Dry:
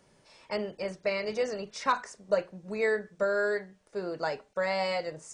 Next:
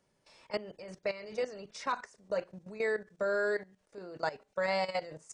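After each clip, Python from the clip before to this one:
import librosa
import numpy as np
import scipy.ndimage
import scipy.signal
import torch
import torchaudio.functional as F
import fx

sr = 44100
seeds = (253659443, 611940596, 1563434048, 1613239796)

y = fx.level_steps(x, sr, step_db=15)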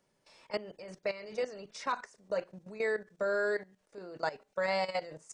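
y = fx.peak_eq(x, sr, hz=64.0, db=-6.5, octaves=1.6)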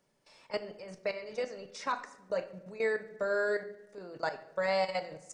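y = fx.room_shoebox(x, sr, seeds[0], volume_m3=310.0, walls='mixed', distance_m=0.35)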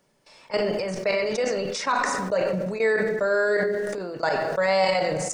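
y = fx.sustainer(x, sr, db_per_s=22.0)
y = y * librosa.db_to_amplitude(8.0)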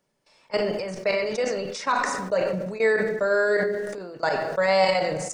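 y = fx.upward_expand(x, sr, threshold_db=-38.0, expansion=1.5)
y = y * librosa.db_to_amplitude(2.0)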